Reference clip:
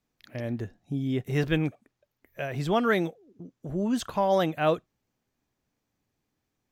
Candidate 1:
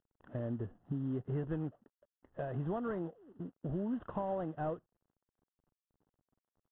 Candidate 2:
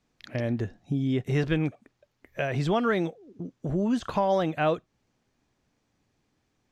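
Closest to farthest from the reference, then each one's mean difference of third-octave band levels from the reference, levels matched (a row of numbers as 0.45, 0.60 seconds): 2, 1; 3.0, 7.5 decibels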